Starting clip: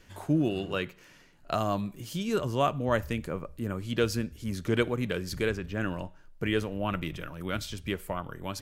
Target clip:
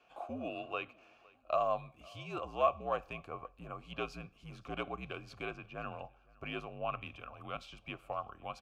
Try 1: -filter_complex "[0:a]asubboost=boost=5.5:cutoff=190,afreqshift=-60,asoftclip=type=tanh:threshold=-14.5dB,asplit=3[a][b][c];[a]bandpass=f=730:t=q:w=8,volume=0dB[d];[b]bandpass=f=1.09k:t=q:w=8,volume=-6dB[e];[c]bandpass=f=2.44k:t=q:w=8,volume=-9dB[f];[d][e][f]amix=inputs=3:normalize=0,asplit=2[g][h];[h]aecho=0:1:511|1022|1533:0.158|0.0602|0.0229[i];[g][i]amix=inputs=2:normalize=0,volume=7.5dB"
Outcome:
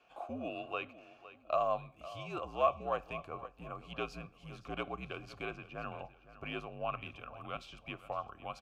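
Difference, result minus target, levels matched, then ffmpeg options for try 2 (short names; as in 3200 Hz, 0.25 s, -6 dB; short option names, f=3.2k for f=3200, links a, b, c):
echo-to-direct +9.5 dB
-filter_complex "[0:a]asubboost=boost=5.5:cutoff=190,afreqshift=-60,asoftclip=type=tanh:threshold=-14.5dB,asplit=3[a][b][c];[a]bandpass=f=730:t=q:w=8,volume=0dB[d];[b]bandpass=f=1.09k:t=q:w=8,volume=-6dB[e];[c]bandpass=f=2.44k:t=q:w=8,volume=-9dB[f];[d][e][f]amix=inputs=3:normalize=0,asplit=2[g][h];[h]aecho=0:1:511|1022:0.0531|0.0202[i];[g][i]amix=inputs=2:normalize=0,volume=7.5dB"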